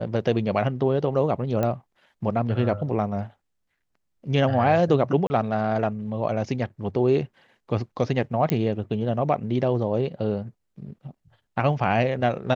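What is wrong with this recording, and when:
1.63 s: pop -13 dBFS
5.27–5.30 s: dropout 30 ms
8.50 s: pop -9 dBFS

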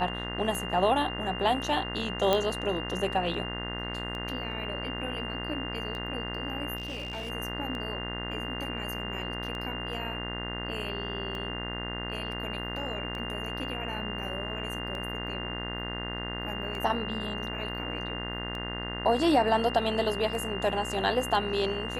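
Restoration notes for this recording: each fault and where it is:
buzz 60 Hz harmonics 35 -37 dBFS
tick 33 1/3 rpm
whine 2.8 kHz -37 dBFS
2.33 s: pop -11 dBFS
6.76–7.30 s: clipped -32 dBFS

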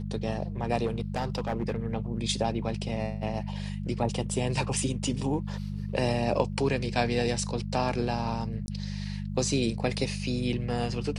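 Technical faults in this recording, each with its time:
hum 50 Hz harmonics 4 -34 dBFS
0.85–1.76 s: clipped -24 dBFS
8.66–8.68 s: dropout 20 ms

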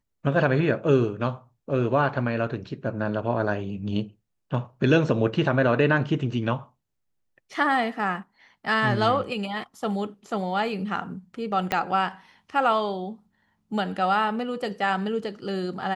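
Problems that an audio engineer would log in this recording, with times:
11.72 s: pop -9 dBFS

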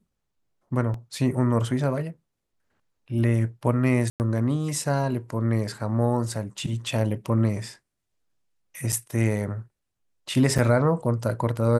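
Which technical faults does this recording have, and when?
0.94 s: dropout 2.9 ms
4.10–4.20 s: dropout 99 ms
8.92–8.93 s: dropout 6.6 ms
10.58–10.59 s: dropout 5.6 ms

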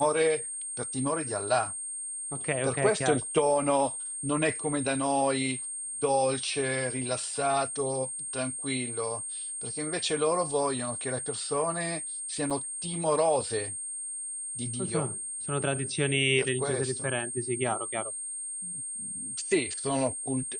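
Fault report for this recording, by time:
whine 8.6 kHz -34 dBFS
12.50–12.51 s: dropout 5.9 ms

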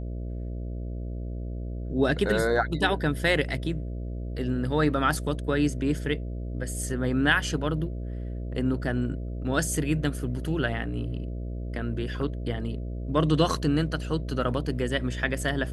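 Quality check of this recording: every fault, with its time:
buzz 60 Hz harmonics 11 -33 dBFS

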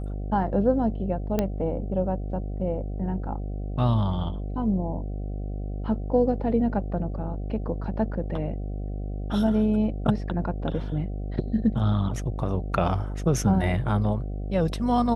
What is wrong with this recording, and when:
buzz 50 Hz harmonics 15 -31 dBFS
1.39 s: pop -11 dBFS

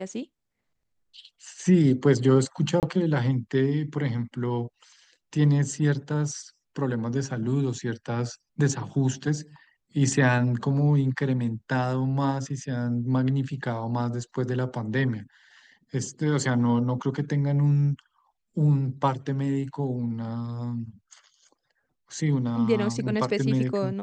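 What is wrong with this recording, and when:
2.80–2.83 s: dropout 28 ms

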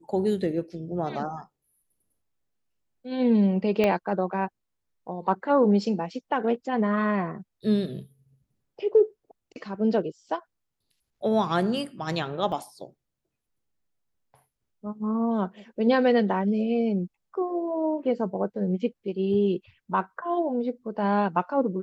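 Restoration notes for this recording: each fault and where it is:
3.84 s: pop -12 dBFS
12.52 s: dropout 3.7 ms

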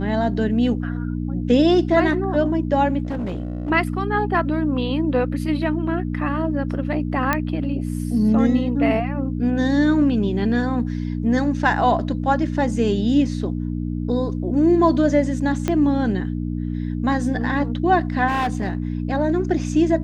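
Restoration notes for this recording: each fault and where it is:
hum 60 Hz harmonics 5 -25 dBFS
3.05–3.71 s: clipped -22 dBFS
7.33 s: pop -6 dBFS
15.68 s: pop -8 dBFS
18.27–18.92 s: clipped -17.5 dBFS

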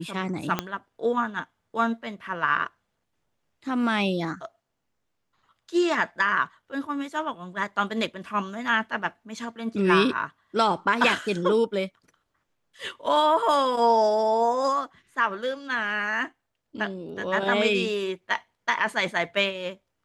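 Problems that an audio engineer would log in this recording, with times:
0.59 s: pop -10 dBFS
13.06 s: dropout 3.6 ms

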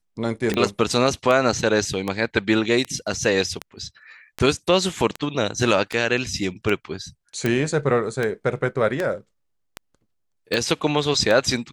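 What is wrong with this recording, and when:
tick 78 rpm -11 dBFS
7.46 s: pop

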